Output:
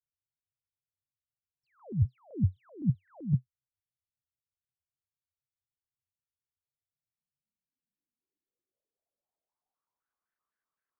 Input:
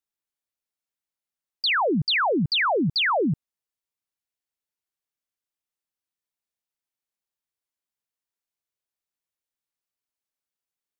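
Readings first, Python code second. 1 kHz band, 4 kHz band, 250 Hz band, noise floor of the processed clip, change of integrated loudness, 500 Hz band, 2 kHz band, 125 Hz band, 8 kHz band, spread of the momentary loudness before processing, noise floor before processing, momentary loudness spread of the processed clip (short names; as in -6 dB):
under -35 dB, under -40 dB, -9.0 dB, under -85 dBFS, -10.5 dB, -25.5 dB, under -40 dB, +1.5 dB, n/a, 5 LU, under -85 dBFS, 3 LU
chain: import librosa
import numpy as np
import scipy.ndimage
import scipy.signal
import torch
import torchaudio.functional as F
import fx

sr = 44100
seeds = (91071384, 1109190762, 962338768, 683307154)

y = fx.filter_sweep_lowpass(x, sr, from_hz=110.0, to_hz=1400.0, start_s=6.81, end_s=10.24, q=5.6)
y = fx.vibrato_shape(y, sr, shape='square', rate_hz=3.9, depth_cents=250.0)
y = y * 10.0 ** (-1.5 / 20.0)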